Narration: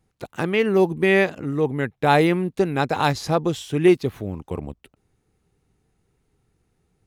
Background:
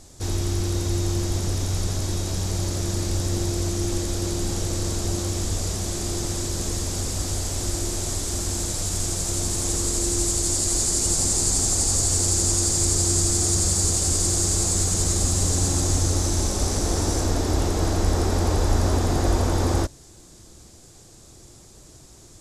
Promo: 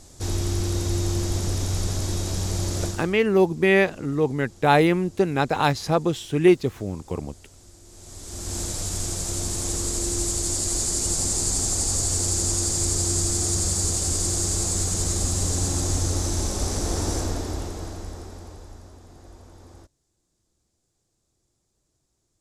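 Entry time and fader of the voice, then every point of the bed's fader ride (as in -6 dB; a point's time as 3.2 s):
2.60 s, -0.5 dB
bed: 2.86 s -0.5 dB
3.2 s -23.5 dB
7.82 s -23.5 dB
8.57 s -2.5 dB
17.16 s -2.5 dB
18.95 s -26 dB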